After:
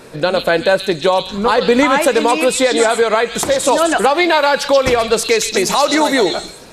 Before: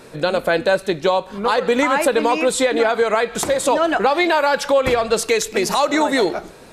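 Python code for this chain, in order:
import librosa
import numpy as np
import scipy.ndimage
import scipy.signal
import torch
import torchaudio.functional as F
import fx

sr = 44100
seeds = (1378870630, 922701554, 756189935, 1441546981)

y = fx.low_shelf(x, sr, hz=220.0, db=7.5, at=(1.2, 1.99))
y = fx.echo_stepped(y, sr, ms=130, hz=4000.0, octaves=0.7, feedback_pct=70, wet_db=0.0)
y = F.gain(torch.from_numpy(y), 3.5).numpy()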